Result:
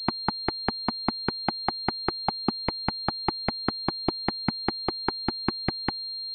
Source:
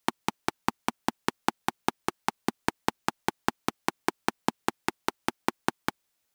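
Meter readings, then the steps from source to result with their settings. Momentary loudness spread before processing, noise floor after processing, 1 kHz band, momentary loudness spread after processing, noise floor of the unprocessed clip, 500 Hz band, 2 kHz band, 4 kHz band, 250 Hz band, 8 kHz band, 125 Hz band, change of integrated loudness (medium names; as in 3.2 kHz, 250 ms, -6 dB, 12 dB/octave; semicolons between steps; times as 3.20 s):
2 LU, -35 dBFS, 0.0 dB, 1 LU, -78 dBFS, +1.5 dB, -1.5 dB, +11.5 dB, +3.0 dB, under -25 dB, +7.0 dB, +3.5 dB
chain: sine folder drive 12 dB, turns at -3 dBFS; class-D stage that switches slowly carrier 4.2 kHz; trim -8 dB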